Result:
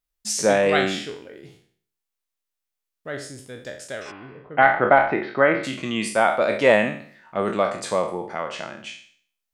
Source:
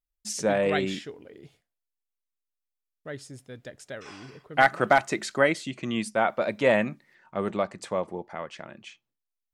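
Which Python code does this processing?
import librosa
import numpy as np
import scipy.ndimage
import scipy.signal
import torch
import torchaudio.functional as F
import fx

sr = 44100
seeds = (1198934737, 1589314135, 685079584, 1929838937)

p1 = fx.spec_trails(x, sr, decay_s=0.52)
p2 = fx.low_shelf(p1, sr, hz=270.0, db=-5.0)
p3 = fx.rider(p2, sr, range_db=3, speed_s=2.0)
p4 = p2 + F.gain(torch.from_numpy(p3), -2.0).numpy()
y = fx.gaussian_blur(p4, sr, sigma=3.5, at=(4.1, 5.63), fade=0.02)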